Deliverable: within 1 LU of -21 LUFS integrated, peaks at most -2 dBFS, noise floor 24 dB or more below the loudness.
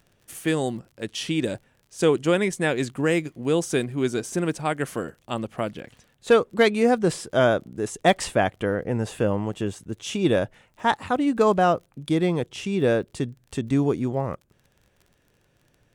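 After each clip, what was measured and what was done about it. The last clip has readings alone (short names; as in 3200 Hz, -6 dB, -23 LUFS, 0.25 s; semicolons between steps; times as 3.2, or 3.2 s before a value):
ticks 33/s; loudness -24.5 LUFS; peak -6.0 dBFS; loudness target -21.0 LUFS
-> de-click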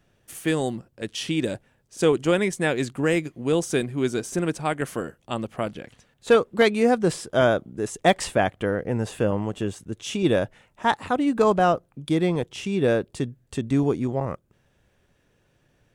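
ticks 0.13/s; loudness -24.5 LUFS; peak -6.0 dBFS; loudness target -21.0 LUFS
-> gain +3.5 dB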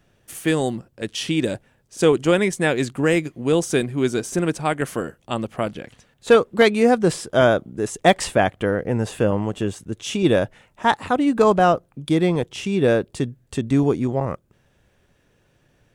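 loudness -21.0 LUFS; peak -2.5 dBFS; noise floor -63 dBFS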